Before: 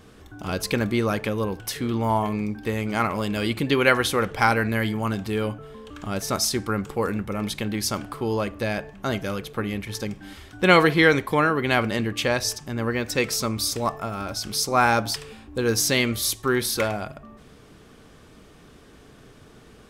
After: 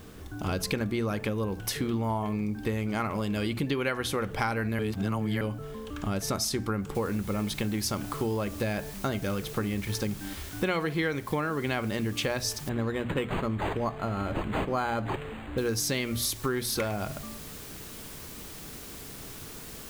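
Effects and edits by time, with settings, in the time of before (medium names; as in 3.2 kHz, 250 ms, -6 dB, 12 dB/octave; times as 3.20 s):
4.79–5.41 s: reverse
6.95 s: noise floor step -60 dB -45 dB
12.69–15.58 s: decimation joined by straight lines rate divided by 8×
whole clip: bass shelf 280 Hz +5.5 dB; hum notches 60/120/180/240 Hz; compression 6:1, threshold -26 dBFS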